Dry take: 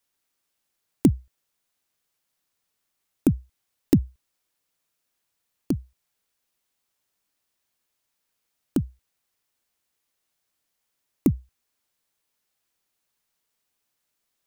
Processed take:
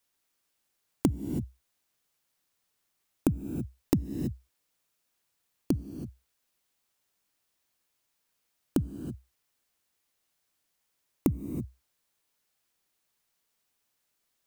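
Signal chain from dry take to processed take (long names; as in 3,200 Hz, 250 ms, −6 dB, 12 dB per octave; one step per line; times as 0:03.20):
reverb whose tail is shaped and stops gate 350 ms rising, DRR 11.5 dB
downward compressor 5 to 1, threshold −22 dBFS, peak gain reduction 9.5 dB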